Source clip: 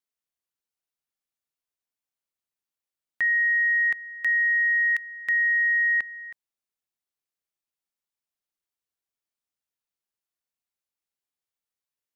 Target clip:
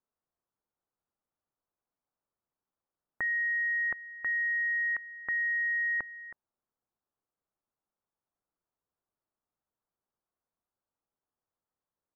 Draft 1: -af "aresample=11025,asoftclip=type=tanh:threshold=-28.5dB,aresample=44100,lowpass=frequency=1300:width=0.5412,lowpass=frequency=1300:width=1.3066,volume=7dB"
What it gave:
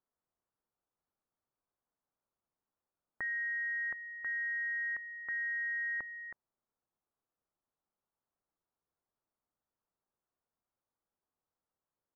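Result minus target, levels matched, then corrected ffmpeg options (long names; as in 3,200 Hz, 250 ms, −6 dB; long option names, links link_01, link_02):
soft clipping: distortion +12 dB
-af "aresample=11025,asoftclip=type=tanh:threshold=-19dB,aresample=44100,lowpass=frequency=1300:width=0.5412,lowpass=frequency=1300:width=1.3066,volume=7dB"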